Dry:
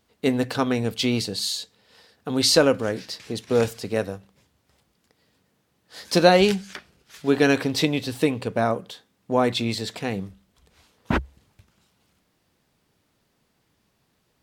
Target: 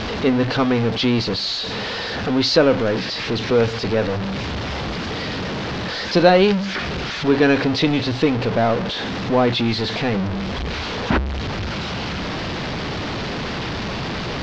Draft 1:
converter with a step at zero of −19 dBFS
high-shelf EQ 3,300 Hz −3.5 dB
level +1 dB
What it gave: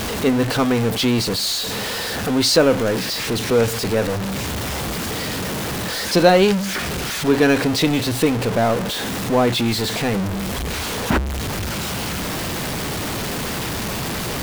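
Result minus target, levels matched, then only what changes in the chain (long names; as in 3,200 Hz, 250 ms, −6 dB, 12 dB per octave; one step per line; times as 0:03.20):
8,000 Hz band +13.0 dB
add after converter with a step at zero: inverse Chebyshev low-pass filter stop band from 9,000 Hz, stop band 40 dB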